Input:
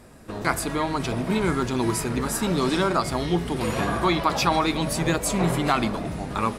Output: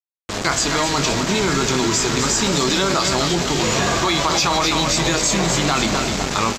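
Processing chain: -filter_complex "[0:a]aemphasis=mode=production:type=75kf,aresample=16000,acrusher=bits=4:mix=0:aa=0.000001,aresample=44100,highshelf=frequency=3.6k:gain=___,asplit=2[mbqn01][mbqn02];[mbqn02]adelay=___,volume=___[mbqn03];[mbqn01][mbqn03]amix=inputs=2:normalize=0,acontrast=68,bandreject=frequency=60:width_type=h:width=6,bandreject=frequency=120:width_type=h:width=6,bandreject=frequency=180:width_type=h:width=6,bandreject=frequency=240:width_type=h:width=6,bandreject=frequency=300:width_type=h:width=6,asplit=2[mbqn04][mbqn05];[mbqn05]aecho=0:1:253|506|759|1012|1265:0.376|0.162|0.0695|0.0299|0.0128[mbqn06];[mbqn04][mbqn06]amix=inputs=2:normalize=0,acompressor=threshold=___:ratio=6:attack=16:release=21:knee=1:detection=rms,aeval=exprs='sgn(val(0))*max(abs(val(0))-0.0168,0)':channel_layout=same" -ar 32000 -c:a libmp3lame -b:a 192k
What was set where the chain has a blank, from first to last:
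3, 21, -11dB, -17dB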